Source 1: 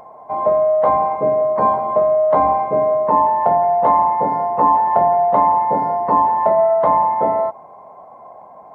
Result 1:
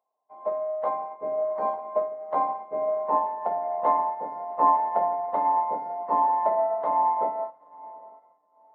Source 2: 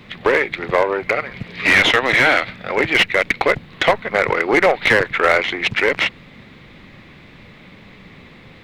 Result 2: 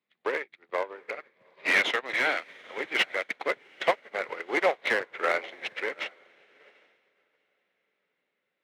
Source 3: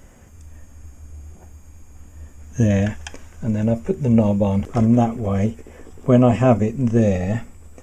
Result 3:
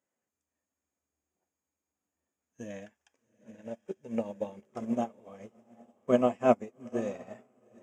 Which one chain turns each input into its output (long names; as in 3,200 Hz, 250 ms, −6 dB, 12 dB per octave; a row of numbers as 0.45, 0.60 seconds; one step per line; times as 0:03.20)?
high-pass filter 300 Hz 12 dB per octave
on a send: feedback delay with all-pass diffusion 797 ms, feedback 48%, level −9.5 dB
on the sum: expander for the loud parts 2.5 to 1, over −33 dBFS
normalise the peak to −9 dBFS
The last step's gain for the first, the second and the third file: −7.0, −7.0, −4.0 decibels